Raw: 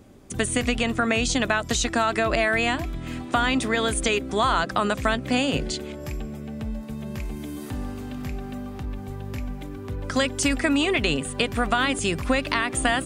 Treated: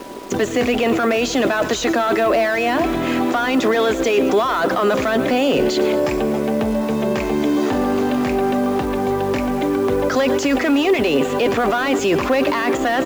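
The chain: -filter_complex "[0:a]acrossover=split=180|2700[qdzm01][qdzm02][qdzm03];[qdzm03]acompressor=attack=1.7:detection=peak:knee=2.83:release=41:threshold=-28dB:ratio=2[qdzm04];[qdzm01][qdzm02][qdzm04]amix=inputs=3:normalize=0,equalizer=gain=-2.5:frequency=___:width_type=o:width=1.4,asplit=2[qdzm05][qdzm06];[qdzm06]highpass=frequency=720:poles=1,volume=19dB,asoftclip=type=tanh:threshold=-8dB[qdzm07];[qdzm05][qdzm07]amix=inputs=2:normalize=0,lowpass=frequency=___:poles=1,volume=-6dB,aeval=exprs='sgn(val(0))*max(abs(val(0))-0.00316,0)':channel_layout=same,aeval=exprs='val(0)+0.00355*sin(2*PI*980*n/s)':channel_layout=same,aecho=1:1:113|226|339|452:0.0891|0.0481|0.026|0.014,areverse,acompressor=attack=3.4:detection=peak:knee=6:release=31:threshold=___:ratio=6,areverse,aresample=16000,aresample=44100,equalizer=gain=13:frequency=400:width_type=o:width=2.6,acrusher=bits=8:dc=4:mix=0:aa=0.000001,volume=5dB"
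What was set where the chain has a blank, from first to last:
130, 5700, -30dB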